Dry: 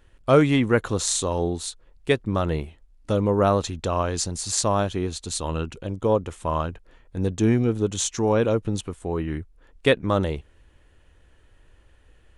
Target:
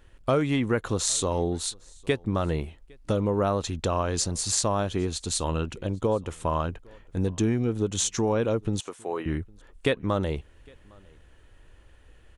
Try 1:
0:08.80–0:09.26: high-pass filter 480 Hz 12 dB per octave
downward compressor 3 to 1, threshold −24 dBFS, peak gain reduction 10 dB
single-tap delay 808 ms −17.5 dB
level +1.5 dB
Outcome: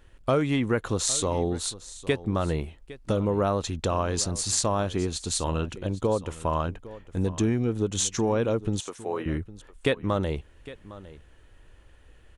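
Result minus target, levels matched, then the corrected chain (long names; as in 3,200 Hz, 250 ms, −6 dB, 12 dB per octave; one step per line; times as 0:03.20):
echo-to-direct +10.5 dB
0:08.80–0:09.26: high-pass filter 480 Hz 12 dB per octave
downward compressor 3 to 1, threshold −24 dBFS, peak gain reduction 10 dB
single-tap delay 808 ms −28 dB
level +1.5 dB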